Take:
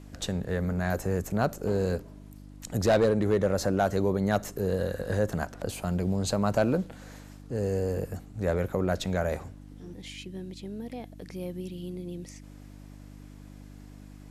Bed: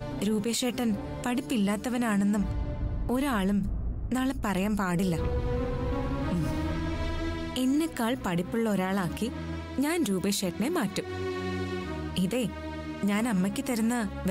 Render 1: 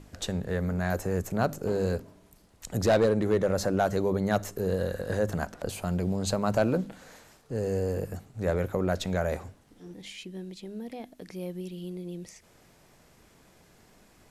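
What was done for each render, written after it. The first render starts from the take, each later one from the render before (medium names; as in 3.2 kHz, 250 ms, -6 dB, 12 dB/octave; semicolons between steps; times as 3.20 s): de-hum 50 Hz, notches 6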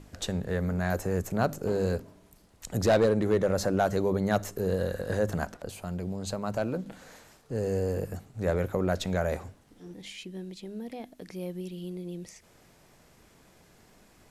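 5.57–6.86 s: gain -5.5 dB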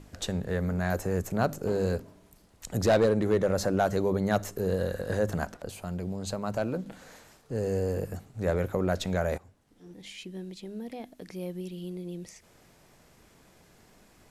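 9.38–10.26 s: fade in, from -15.5 dB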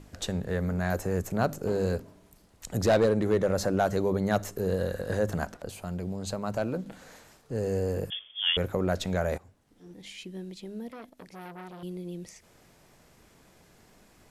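8.10–8.57 s: frequency inversion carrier 3.4 kHz; 10.88–11.83 s: transformer saturation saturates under 1.4 kHz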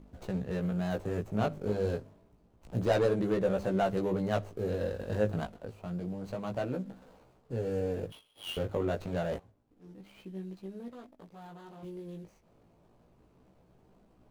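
median filter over 25 samples; chorus 0.29 Hz, delay 15.5 ms, depth 3.4 ms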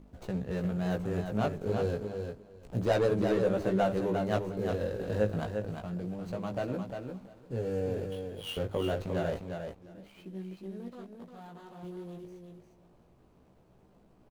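feedback delay 352 ms, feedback 15%, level -6 dB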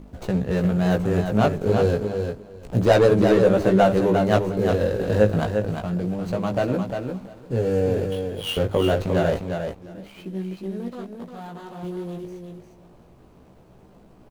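trim +11 dB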